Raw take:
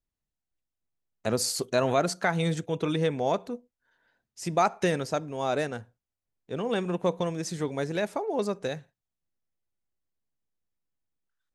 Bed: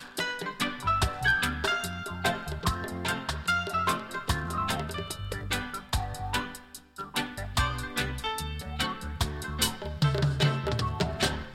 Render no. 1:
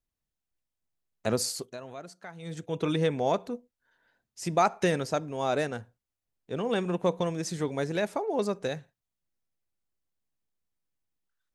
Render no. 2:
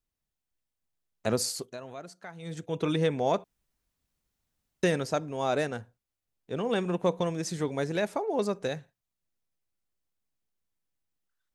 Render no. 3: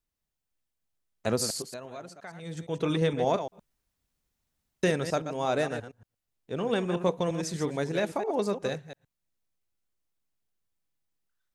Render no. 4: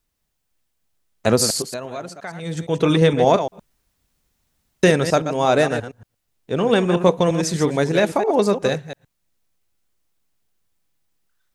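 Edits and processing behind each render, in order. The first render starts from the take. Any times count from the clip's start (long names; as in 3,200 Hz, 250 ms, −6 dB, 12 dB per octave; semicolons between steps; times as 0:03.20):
0:01.33–0:02.86: duck −18 dB, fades 0.45 s
0:03.44–0:04.83: fill with room tone
delay that plays each chunk backwards 116 ms, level −9 dB
level +11 dB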